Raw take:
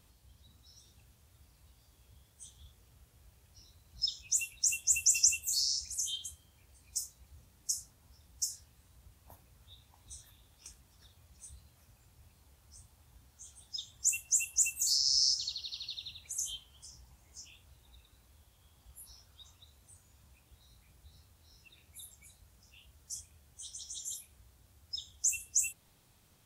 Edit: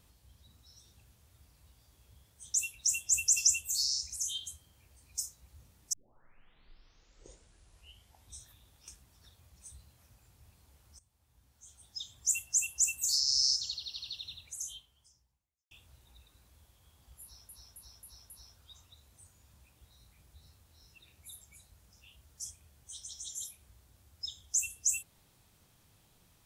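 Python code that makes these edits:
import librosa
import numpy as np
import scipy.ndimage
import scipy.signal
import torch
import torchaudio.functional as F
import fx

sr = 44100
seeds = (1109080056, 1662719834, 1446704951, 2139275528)

y = fx.edit(x, sr, fx.cut(start_s=2.54, length_s=1.78),
    fx.tape_start(start_s=7.71, length_s=2.47),
    fx.fade_in_from(start_s=12.77, length_s=1.13, floor_db=-17.0),
    fx.fade_out_span(start_s=16.16, length_s=1.33, curve='qua'),
    fx.repeat(start_s=19.0, length_s=0.27, count=5), tone=tone)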